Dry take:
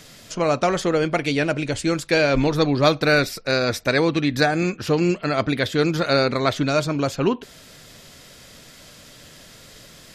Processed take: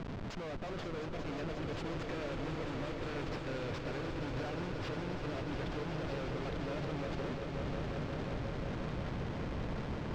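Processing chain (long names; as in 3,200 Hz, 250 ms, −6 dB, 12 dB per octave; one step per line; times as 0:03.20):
harmonic and percussive parts rebalanced harmonic −3 dB
downward compressor 16 to 1, threshold −33 dBFS, peak gain reduction 22.5 dB
comparator with hysteresis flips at −41 dBFS
high-frequency loss of the air 170 metres
echo that builds up and dies away 178 ms, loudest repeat 5, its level −9 dB
level −1.5 dB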